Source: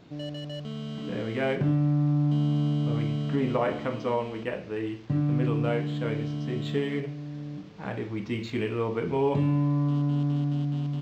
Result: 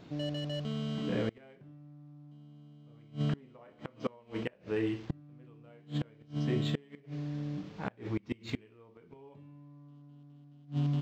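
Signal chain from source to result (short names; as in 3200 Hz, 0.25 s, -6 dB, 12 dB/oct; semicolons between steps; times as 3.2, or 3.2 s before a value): flipped gate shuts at -21 dBFS, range -29 dB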